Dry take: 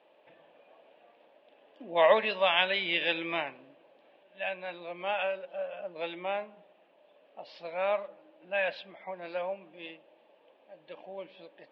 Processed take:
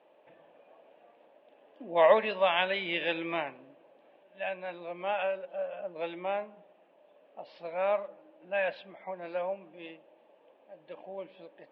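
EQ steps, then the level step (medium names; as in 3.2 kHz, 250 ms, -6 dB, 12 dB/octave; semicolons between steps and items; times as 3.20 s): low-pass 1.7 kHz 6 dB/octave; +1.5 dB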